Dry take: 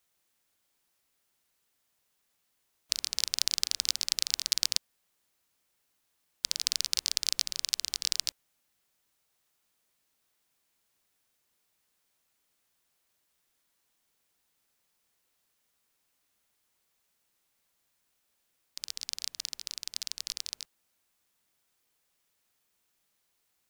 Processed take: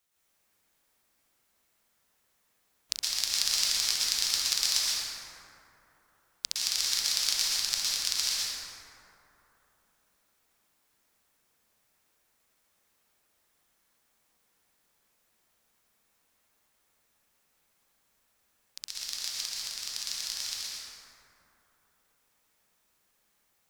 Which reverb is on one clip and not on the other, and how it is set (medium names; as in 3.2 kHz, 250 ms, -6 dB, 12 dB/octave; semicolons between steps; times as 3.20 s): plate-style reverb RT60 3.2 s, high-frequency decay 0.35×, pre-delay 105 ms, DRR -8 dB; trim -2.5 dB